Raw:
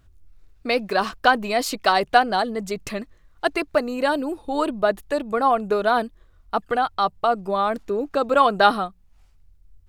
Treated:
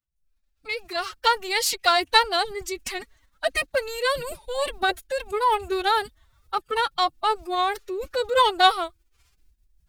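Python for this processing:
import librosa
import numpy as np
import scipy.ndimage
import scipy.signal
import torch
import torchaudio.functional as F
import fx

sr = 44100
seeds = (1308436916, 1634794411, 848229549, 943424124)

y = fx.fade_in_head(x, sr, length_s=1.69)
y = fx.tilt_shelf(y, sr, db=-6.5, hz=1200.0)
y = fx.pitch_keep_formants(y, sr, semitones=10.5)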